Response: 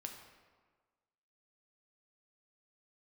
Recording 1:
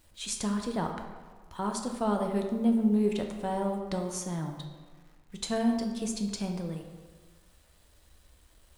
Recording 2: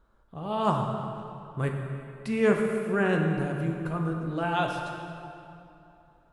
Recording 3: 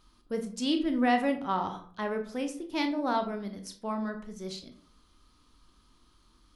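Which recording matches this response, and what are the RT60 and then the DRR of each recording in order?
1; 1.5, 2.7, 0.50 s; 3.0, 1.5, 6.0 dB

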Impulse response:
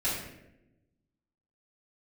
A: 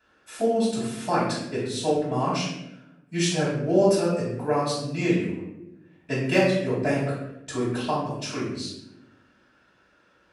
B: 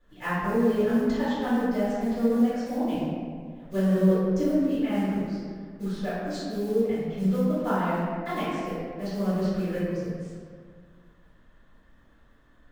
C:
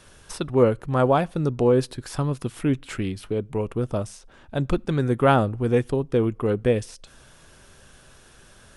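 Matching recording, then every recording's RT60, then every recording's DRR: A; 0.90 s, 1.8 s, not exponential; -11.5, -14.5, 21.0 dB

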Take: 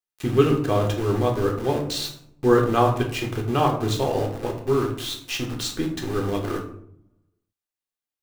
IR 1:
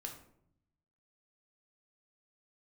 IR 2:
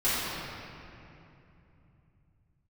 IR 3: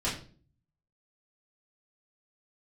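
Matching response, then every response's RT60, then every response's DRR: 1; 0.70, 2.9, 0.45 s; 1.5, -13.5, -9.0 dB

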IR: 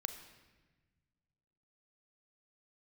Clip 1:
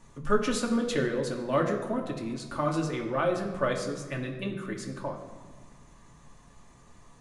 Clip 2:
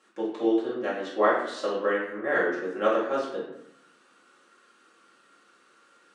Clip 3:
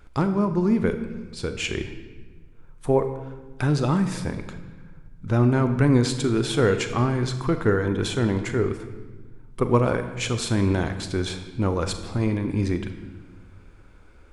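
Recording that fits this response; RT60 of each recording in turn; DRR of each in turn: 3; 1.7, 0.75, 1.3 s; 0.0, -7.5, 8.0 dB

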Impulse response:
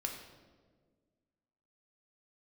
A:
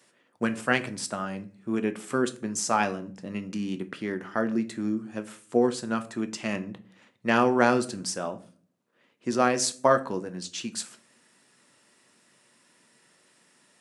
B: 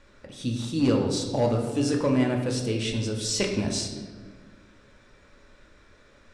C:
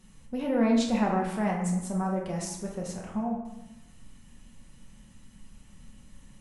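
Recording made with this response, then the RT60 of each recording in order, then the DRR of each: B; 0.45, 1.6, 1.0 s; 8.5, 1.0, -1.5 dB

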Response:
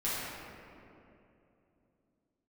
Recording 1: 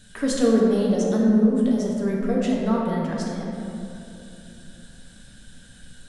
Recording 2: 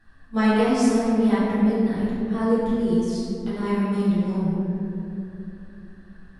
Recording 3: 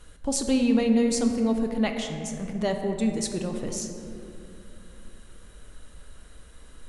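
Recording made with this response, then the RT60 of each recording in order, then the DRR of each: 2; 2.9, 2.9, 2.9 s; -4.0, -11.0, 4.0 dB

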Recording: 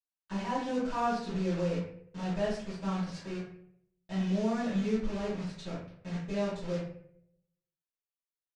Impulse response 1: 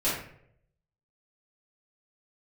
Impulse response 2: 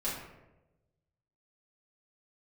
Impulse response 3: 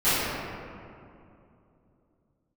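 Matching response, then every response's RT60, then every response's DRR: 1; 0.65, 1.0, 2.7 s; -13.0, -9.5, -18.5 dB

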